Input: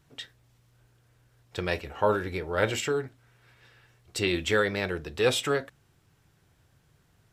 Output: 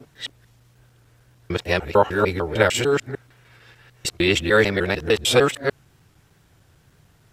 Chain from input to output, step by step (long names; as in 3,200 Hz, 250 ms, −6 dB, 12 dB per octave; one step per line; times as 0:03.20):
reversed piece by piece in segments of 150 ms
tape wow and flutter 41 cents
level +8 dB